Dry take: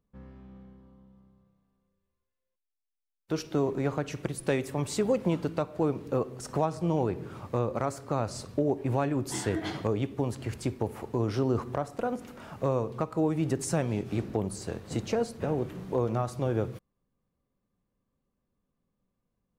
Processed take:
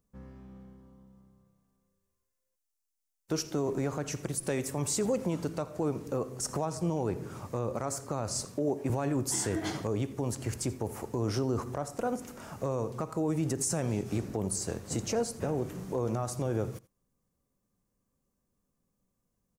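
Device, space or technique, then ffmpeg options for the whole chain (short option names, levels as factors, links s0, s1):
over-bright horn tweeter: -filter_complex "[0:a]asettb=1/sr,asplit=3[s0][s1][s2];[s0]atrim=end=8.454[s3];[s1]atrim=start=8.45:end=8.9,asetpts=PTS-STARTPTS,afade=t=in:d=0.004:c=qsin,afade=t=out:st=0.446:d=0.004:c=qsin,highpass=140[s4];[s2]atrim=start=8.896[s5];[s3][s4]acrossfade=d=0.004:c1=hsin:c2=qsin[s6];[s6][s5]acrossfade=d=0.004:c1=qsin:c2=hsin,highshelf=f=4800:t=q:w=1.5:g=7.5,aecho=1:1:84:0.0944,alimiter=limit=0.0891:level=0:latency=1:release=45"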